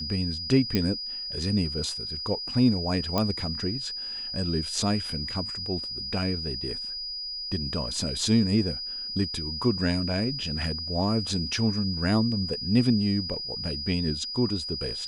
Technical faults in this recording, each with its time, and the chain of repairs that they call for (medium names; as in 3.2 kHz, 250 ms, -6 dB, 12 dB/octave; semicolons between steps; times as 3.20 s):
whine 4.9 kHz -32 dBFS
0.75 s: pop -11 dBFS
3.18 s: pop -11 dBFS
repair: de-click; band-stop 4.9 kHz, Q 30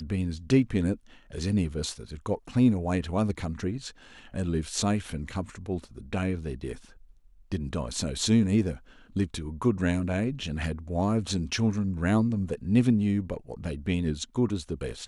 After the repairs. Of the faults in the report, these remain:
0.75 s: pop
3.18 s: pop